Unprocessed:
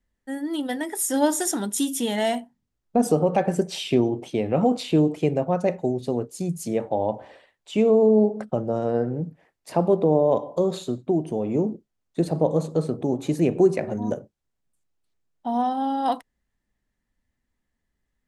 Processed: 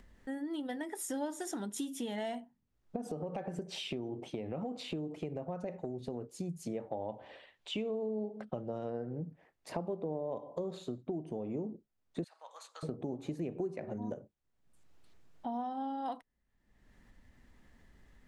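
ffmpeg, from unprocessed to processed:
-filter_complex "[0:a]asettb=1/sr,asplit=3[a][b][c];[a]atrim=end=2.964[d];[b]atrim=start=2.96:end=6.39,asetpts=PTS-STARTPTS,afade=t=in:d=0.004:c=qsin,afade=t=out:st=3.426:d=0.004:c=qsin,acompressor=threshold=-27dB:ratio=2:attack=3.2:release=140:knee=1:detection=peak[e];[c]atrim=start=6.386[f];[d][e]acrossfade=d=0.004:c1=hsin:c2=qsin[g];[g][f]acrossfade=d=0.004:c1=qsin:c2=hsin,asettb=1/sr,asplit=3[h][i][j];[h]atrim=end=7.094[k];[i]atrim=start=7.09:end=8.9,asetpts=PTS-STARTPTS,afade=t=in:d=0.004:c=qsin,afade=t=out:st=1.806:d=0.004:c=qsin,equalizer=f=3.2k:t=o:w=1.2:g=8[l];[j]atrim=start=8.896[m];[k][l]acrossfade=d=0.004:c1=hsin:c2=qsin[n];[n][m]acrossfade=d=0.004:c1=qsin:c2=hsin,asettb=1/sr,asplit=3[o][p][q];[o]atrim=end=12.244[r];[p]atrim=start=12.24:end=12.83,asetpts=PTS-STARTPTS,afade=t=in:d=0.004:c=qsin,afade=t=out:st=0.586:d=0.004:c=qsin,highpass=f=1.3k:w=0.5412,highpass=f=1.3k:w=1.3066[s];[q]atrim=start=12.826[t];[r][s]acrossfade=d=0.004:c1=hsin:c2=qsin[u];[u][t]acrossfade=d=0.004:c1=qsin:c2=hsin,acompressor=mode=upward:threshold=-37dB:ratio=2.5,lowpass=f=3.4k:p=1,acompressor=threshold=-32dB:ratio=4,volume=-4.5dB"

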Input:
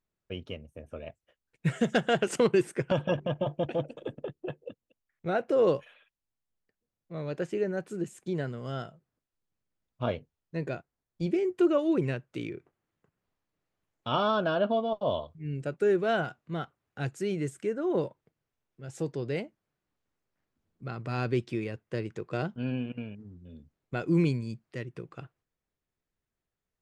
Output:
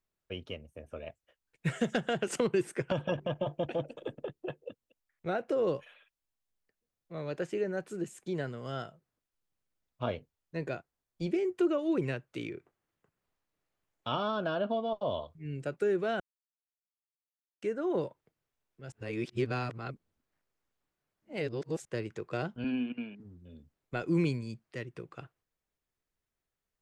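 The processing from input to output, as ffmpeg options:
-filter_complex "[0:a]asettb=1/sr,asplit=3[a][b][c];[a]atrim=end=22.644[d];[b]atrim=start=22.64:end=23.2,asetpts=PTS-STARTPTS,afade=t=in:d=0.004:c=qsin,afade=t=out:st=0.556:d=0.004:c=qsin,highpass=f=180:w=0.5412,highpass=f=180:w=1.3066,equalizer=f=250:t=q:w=4:g=6,equalizer=f=540:t=q:w=4:g=-9,equalizer=f=2.2k:t=q:w=4:g=3,equalizer=f=3.7k:t=q:w=4:g=3,lowpass=f=5.6k:w=0.5412,lowpass=f=5.6k:w=1.3066[e];[c]atrim=start=23.196[f];[d][e]acrossfade=d=0.004:c1=hsin:c2=qsin[g];[g][f]acrossfade=d=0.004:c1=qsin:c2=hsin,asplit=5[h][i][j][k][l];[h]atrim=end=16.2,asetpts=PTS-STARTPTS,afade=t=out:st=16.196:d=0.004:c=hsin[m];[i]atrim=start=16.2:end=17.62,asetpts=PTS-STARTPTS,volume=0[n];[j]atrim=start=17.62:end=18.922,asetpts=PTS-STARTPTS,afade=t=in:d=0.004:c=hsin[o];[k]atrim=start=18.918:end=21.852,asetpts=PTS-STARTPTS,areverse[p];[l]atrim=start=21.848[q];[m][n][o]concat=n=3:v=0:a=1[r];[r][p]acrossfade=d=0.004:c1=hsin:c2=hsin[s];[s][q]acrossfade=d=0.004:c1=hsin:c2=hsin,equalizer=f=150:w=0.5:g=-4.5,acrossover=split=340[t][u];[u]acompressor=threshold=-30dB:ratio=6[v];[t][v]amix=inputs=2:normalize=0"

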